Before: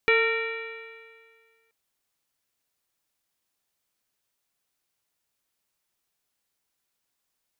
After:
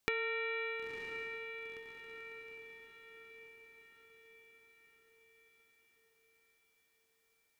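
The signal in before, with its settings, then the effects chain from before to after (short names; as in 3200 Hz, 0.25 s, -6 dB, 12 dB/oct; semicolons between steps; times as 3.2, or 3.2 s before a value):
stretched partials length 1.63 s, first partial 450 Hz, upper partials -13.5/-6.5/-3.5/0.5/-14/-18/-19 dB, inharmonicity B 0.0031, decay 1.86 s, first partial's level -20 dB
compressor 10:1, threshold -33 dBFS; on a send: diffused feedback echo 0.971 s, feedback 51%, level -7.5 dB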